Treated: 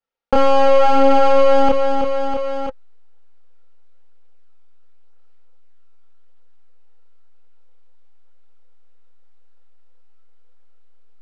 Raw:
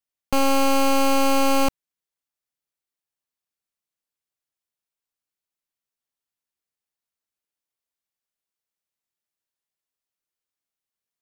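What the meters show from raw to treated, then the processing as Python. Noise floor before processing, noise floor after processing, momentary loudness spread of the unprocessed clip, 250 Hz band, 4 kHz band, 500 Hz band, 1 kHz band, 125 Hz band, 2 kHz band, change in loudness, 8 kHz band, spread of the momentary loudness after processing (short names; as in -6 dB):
under -85 dBFS, -39 dBFS, 5 LU, +1.0 dB, -1.5 dB, +11.0 dB, +7.0 dB, n/a, +1.0 dB, +5.0 dB, under -10 dB, 11 LU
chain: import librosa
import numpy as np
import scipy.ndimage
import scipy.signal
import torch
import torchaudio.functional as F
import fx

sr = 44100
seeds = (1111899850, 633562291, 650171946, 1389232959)

p1 = fx.high_shelf(x, sr, hz=3200.0, db=4.0)
p2 = p1 + 0.46 * np.pad(p1, (int(4.3 * sr / 1000.0), 0))[:len(p1)]
p3 = fx.small_body(p2, sr, hz=(520.0, 830.0, 1300.0), ring_ms=55, db=17)
p4 = fx.chorus_voices(p3, sr, voices=2, hz=0.47, base_ms=29, depth_ms=2.4, mix_pct=50)
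p5 = fx.backlash(p4, sr, play_db=-19.5)
p6 = p4 + (p5 * 10.0 ** (-7.0 / 20.0))
p7 = fx.power_curve(p6, sr, exponent=1.4)
p8 = fx.air_absorb(p7, sr, metres=220.0)
p9 = fx.echo_feedback(p8, sr, ms=326, feedback_pct=30, wet_db=-16.0)
p10 = fx.env_flatten(p9, sr, amount_pct=70)
y = p10 * 10.0 ** (-1.0 / 20.0)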